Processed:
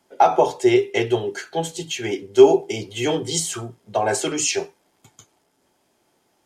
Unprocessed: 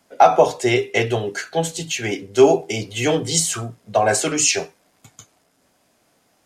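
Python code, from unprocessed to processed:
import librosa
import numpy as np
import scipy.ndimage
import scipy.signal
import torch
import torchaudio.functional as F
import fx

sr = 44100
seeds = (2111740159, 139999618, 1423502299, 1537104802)

y = fx.small_body(x, sr, hz=(370.0, 870.0, 3200.0), ring_ms=50, db=10)
y = y * librosa.db_to_amplitude(-5.0)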